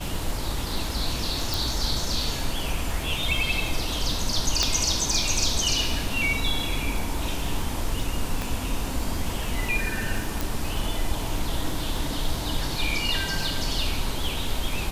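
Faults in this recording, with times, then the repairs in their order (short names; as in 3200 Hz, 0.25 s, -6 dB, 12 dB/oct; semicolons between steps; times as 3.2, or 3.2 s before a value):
crackle 25/s -30 dBFS
1.54 pop
4.63 pop -7 dBFS
8.42 pop
10.41 pop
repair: de-click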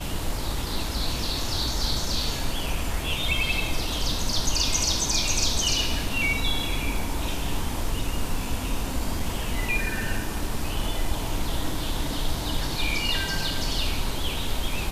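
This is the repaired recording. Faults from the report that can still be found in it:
8.42 pop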